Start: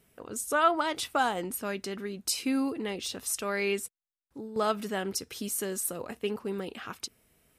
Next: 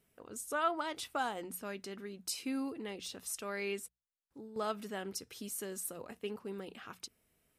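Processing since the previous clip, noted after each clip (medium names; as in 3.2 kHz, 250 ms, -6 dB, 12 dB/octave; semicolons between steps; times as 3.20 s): hum notches 60/120/180 Hz; trim -8.5 dB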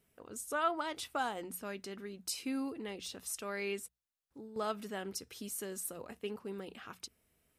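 peaking EQ 70 Hz +5.5 dB 0.34 oct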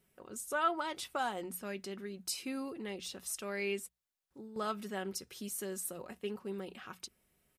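comb 5.4 ms, depth 36%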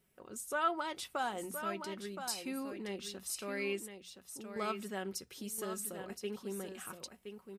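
delay 1020 ms -8 dB; trim -1 dB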